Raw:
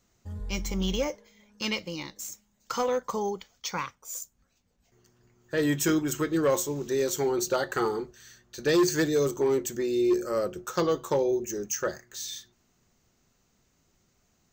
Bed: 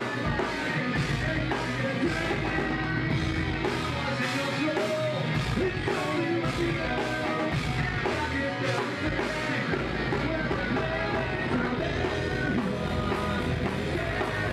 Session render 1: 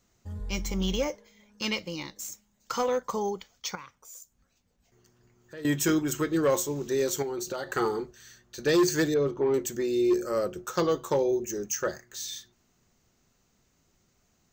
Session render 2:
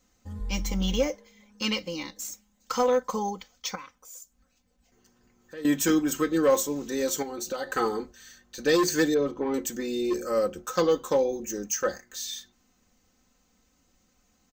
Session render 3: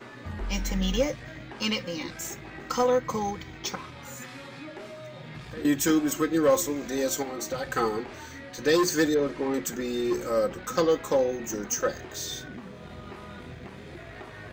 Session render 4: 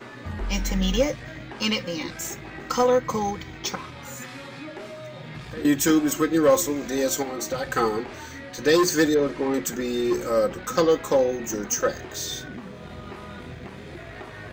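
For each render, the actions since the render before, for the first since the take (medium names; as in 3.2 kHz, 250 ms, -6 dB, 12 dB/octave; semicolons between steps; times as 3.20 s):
3.75–5.65 s: compression 2:1, threshold -51 dBFS; 7.22–7.70 s: compression 5:1, threshold -30 dBFS; 9.14–9.54 s: distance through air 320 m
comb 3.9 ms, depth 70%
add bed -14 dB
trim +3.5 dB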